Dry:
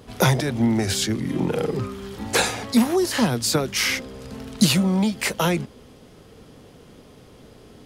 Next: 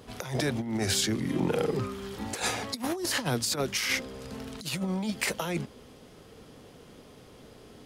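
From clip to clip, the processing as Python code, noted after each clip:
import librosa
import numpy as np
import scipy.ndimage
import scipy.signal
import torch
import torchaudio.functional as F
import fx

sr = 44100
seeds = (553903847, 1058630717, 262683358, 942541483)

y = fx.low_shelf(x, sr, hz=270.0, db=-4.0)
y = fx.over_compress(y, sr, threshold_db=-24.0, ratio=-0.5)
y = F.gain(torch.from_numpy(y), -4.5).numpy()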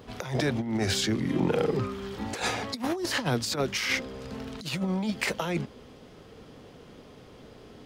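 y = fx.peak_eq(x, sr, hz=11000.0, db=-10.5, octaves=1.2)
y = F.gain(torch.from_numpy(y), 2.0).numpy()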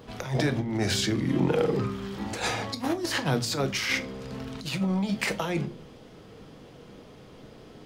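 y = fx.room_shoebox(x, sr, seeds[0], volume_m3=290.0, walls='furnished', distance_m=0.66)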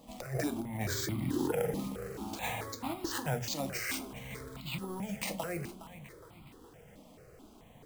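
y = fx.sample_hold(x, sr, seeds[1], rate_hz=11000.0, jitter_pct=0)
y = fx.echo_feedback(y, sr, ms=414, feedback_pct=47, wet_db=-14)
y = fx.phaser_held(y, sr, hz=4.6, low_hz=410.0, high_hz=1700.0)
y = F.gain(torch.from_numpy(y), -4.5).numpy()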